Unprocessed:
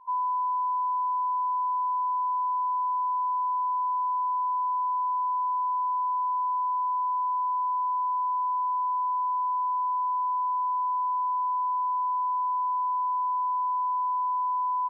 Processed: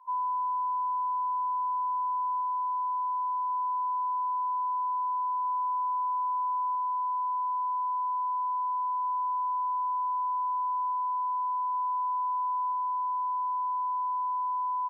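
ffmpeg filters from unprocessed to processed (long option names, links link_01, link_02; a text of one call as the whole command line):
ffmpeg -i in.wav -af "asetnsamples=nb_out_samples=441:pad=0,asendcmd='2.41 highpass f 1000;3.5 highpass f 950;5.45 highpass f 890;6.75 highpass f 970;9.04 highpass f 930;10.92 highpass f 970;11.74 highpass f 920;12.72 highpass f 1000',highpass=940" out.wav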